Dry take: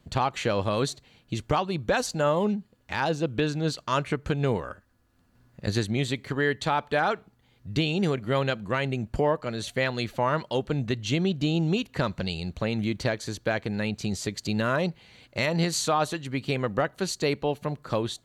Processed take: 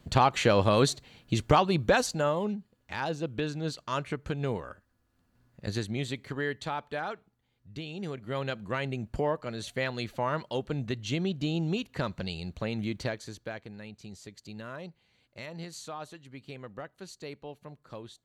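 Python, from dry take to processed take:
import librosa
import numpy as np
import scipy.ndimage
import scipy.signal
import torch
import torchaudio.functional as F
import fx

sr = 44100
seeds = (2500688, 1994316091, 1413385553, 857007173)

y = fx.gain(x, sr, db=fx.line((1.81, 3.0), (2.42, -6.0), (6.28, -6.0), (7.8, -14.5), (8.63, -5.0), (13.01, -5.0), (13.8, -16.0)))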